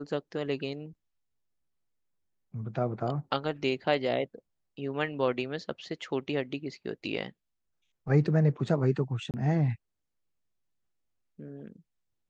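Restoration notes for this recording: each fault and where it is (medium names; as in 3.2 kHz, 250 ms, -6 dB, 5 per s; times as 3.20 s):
9.31–9.34 s: dropout 28 ms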